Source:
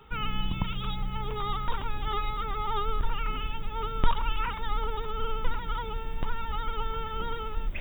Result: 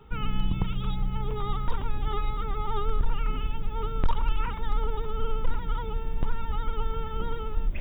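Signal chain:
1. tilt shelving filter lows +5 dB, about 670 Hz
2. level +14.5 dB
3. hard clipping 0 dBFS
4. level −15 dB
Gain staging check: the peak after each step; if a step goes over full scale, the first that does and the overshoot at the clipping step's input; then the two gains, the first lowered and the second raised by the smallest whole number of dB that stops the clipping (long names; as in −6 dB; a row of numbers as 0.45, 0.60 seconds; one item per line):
−6.5, +8.0, 0.0, −15.0 dBFS
step 2, 8.0 dB
step 2 +6.5 dB, step 4 −7 dB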